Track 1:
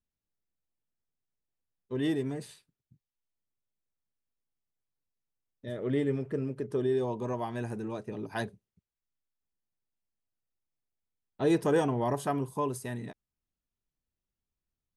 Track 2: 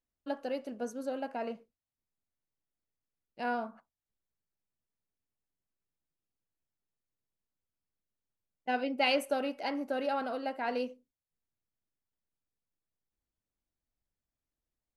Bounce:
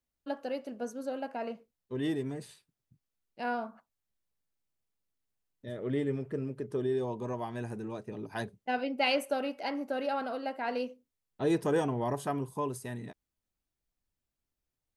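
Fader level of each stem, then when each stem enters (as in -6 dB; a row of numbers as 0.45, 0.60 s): -2.5, 0.0 dB; 0.00, 0.00 s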